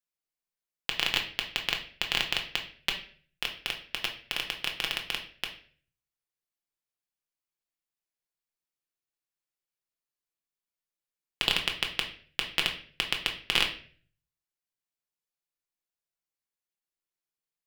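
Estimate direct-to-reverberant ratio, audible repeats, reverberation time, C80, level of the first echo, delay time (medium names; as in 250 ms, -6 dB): 1.5 dB, no echo, 0.45 s, 14.0 dB, no echo, no echo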